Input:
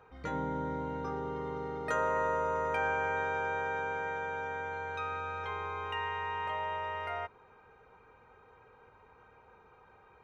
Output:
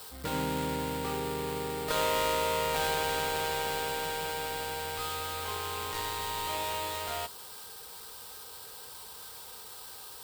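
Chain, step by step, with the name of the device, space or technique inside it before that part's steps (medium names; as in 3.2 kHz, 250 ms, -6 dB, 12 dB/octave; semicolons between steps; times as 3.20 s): budget class-D amplifier (dead-time distortion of 0.22 ms; zero-crossing glitches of -33 dBFS); trim +3.5 dB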